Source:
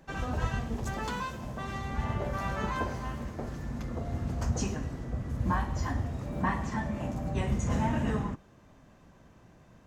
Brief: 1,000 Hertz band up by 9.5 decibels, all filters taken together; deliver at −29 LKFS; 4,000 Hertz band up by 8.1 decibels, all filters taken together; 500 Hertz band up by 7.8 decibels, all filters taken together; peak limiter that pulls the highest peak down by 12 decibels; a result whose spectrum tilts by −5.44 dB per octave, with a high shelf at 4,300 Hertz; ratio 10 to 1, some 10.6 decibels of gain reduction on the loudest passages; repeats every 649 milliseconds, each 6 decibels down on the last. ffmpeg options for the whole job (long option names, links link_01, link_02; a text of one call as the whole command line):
ffmpeg -i in.wav -af "equalizer=frequency=500:width_type=o:gain=7,equalizer=frequency=1000:width_type=o:gain=8.5,equalizer=frequency=4000:width_type=o:gain=7,highshelf=frequency=4300:gain=5.5,acompressor=threshold=-28dB:ratio=10,alimiter=level_in=6dB:limit=-24dB:level=0:latency=1,volume=-6dB,aecho=1:1:649|1298|1947|2596|3245|3894:0.501|0.251|0.125|0.0626|0.0313|0.0157,volume=9dB" out.wav